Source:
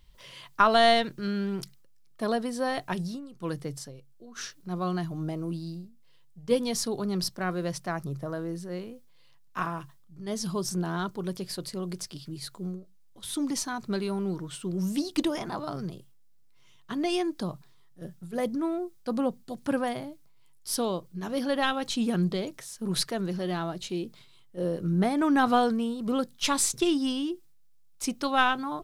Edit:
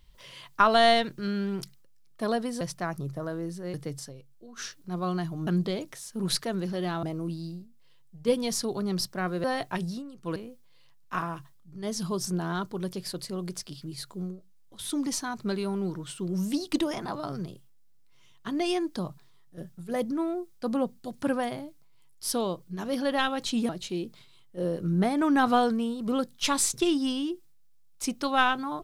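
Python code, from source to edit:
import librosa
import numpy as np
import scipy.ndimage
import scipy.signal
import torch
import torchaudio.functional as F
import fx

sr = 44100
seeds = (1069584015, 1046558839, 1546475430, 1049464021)

y = fx.edit(x, sr, fx.swap(start_s=2.61, length_s=0.92, other_s=7.67, other_length_s=1.13),
    fx.move(start_s=22.13, length_s=1.56, to_s=5.26), tone=tone)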